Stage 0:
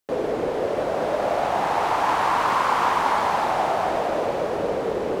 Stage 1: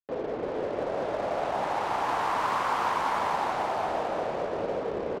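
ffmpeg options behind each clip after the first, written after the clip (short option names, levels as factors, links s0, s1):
-filter_complex "[0:a]asplit=2[s0][s1];[s1]aecho=0:1:350:0.531[s2];[s0][s2]amix=inputs=2:normalize=0,anlmdn=10,volume=0.422"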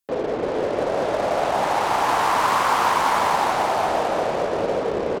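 -af "aemphasis=mode=production:type=cd,volume=2.51"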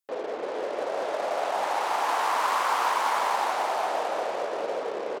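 -af "highpass=440,volume=0.531"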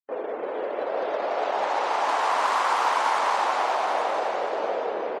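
-af "afftdn=nr=22:nf=-47,aecho=1:1:834:0.447,volume=1.19"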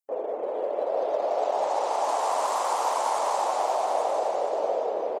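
-af "firequalizer=gain_entry='entry(230,0);entry(590,9);entry(1500,-7);entry(7400,12)':delay=0.05:min_phase=1,volume=0.501"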